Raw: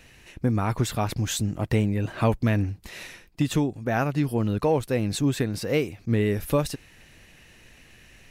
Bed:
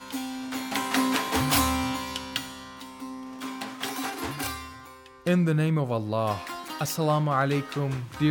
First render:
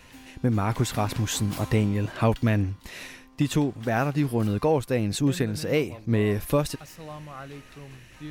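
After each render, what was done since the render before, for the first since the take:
mix in bed −16 dB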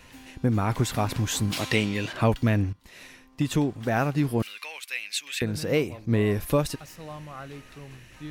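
0:01.52–0:02.13: meter weighting curve D
0:02.73–0:03.66: fade in, from −12.5 dB
0:04.42–0:05.42: high-pass with resonance 2,400 Hz, resonance Q 2.8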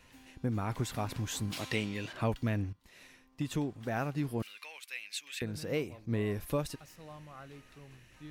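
level −9.5 dB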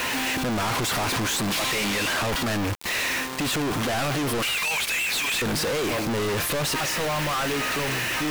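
mid-hump overdrive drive 39 dB, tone 2,900 Hz, clips at −17.5 dBFS
log-companded quantiser 2 bits

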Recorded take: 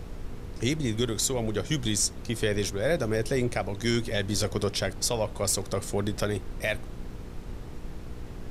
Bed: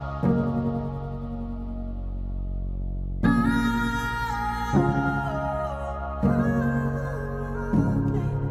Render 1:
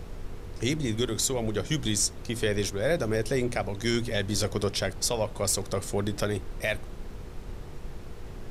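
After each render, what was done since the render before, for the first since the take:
hum removal 60 Hz, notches 5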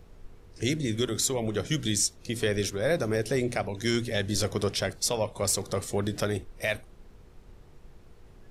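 noise reduction from a noise print 12 dB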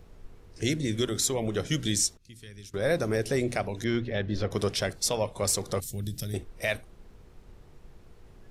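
0:02.17–0:02.74: guitar amp tone stack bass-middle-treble 6-0-2
0:03.84–0:04.51: high-frequency loss of the air 300 metres
0:05.80–0:06.34: drawn EQ curve 140 Hz 0 dB, 430 Hz −16 dB, 680 Hz −19 dB, 990 Hz −26 dB, 3,700 Hz −5 dB, 9,200 Hz 0 dB, 14,000 Hz +12 dB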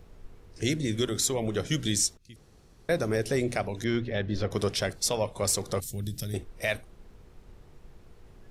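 0:02.36–0:02.89: fill with room tone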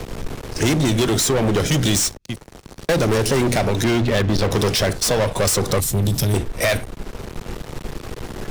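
leveller curve on the samples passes 5
multiband upward and downward compressor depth 40%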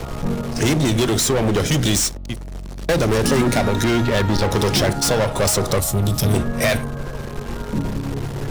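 mix in bed −2 dB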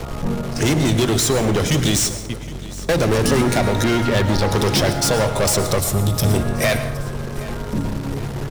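repeating echo 766 ms, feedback 46%, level −18.5 dB
dense smooth reverb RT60 0.71 s, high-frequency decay 0.65×, pre-delay 95 ms, DRR 10 dB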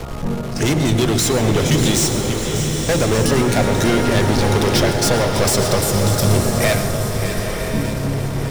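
delay that swaps between a low-pass and a high-pass 297 ms, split 820 Hz, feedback 80%, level −9 dB
slow-attack reverb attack 970 ms, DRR 5 dB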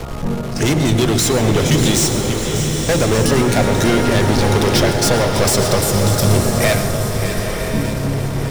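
level +1.5 dB
brickwall limiter −1 dBFS, peak gain reduction 1 dB

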